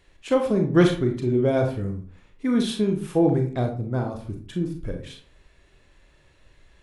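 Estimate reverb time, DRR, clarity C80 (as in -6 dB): 0.45 s, 3.0 dB, 13.0 dB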